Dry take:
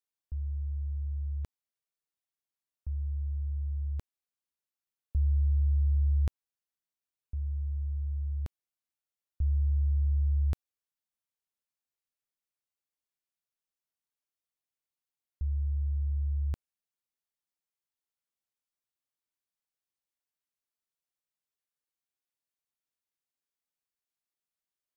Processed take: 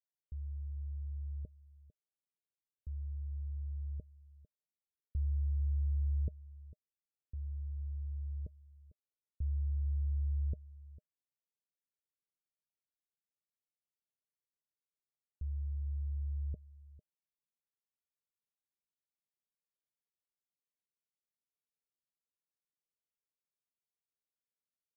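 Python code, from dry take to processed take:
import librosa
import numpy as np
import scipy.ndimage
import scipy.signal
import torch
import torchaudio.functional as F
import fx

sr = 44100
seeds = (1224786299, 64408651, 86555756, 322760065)

y = scipy.signal.sosfilt(scipy.signal.cheby1(6, 6, 630.0, 'lowpass', fs=sr, output='sos'), x)
y = y + 10.0 ** (-18.5 / 20.0) * np.pad(y, (int(450 * sr / 1000.0), 0))[:len(y)]
y = F.gain(torch.from_numpy(y), -3.0).numpy()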